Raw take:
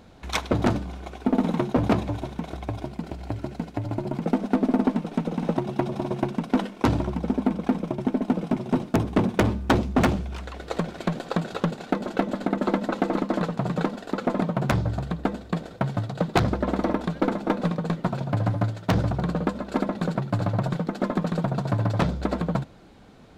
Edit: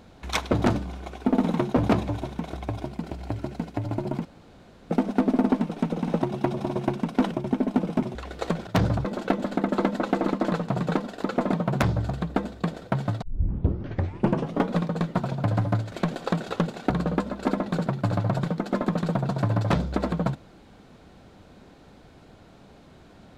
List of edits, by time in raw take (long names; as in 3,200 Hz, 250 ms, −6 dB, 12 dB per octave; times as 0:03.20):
0:04.25: splice in room tone 0.65 s
0:06.66–0:07.85: remove
0:08.69–0:10.44: remove
0:10.96–0:11.94: swap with 0:18.81–0:19.19
0:16.11: tape start 1.55 s